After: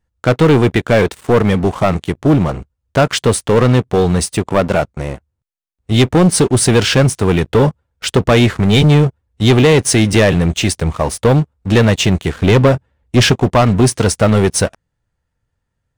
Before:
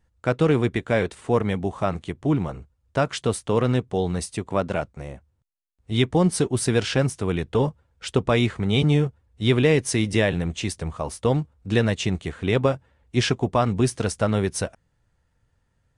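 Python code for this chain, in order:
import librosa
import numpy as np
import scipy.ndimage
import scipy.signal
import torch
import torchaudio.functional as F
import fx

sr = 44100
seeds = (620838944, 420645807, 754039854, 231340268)

y = fx.low_shelf(x, sr, hz=350.0, db=4.5, at=(12.34, 13.32))
y = fx.leveller(y, sr, passes=3)
y = y * 10.0 ** (2.0 / 20.0)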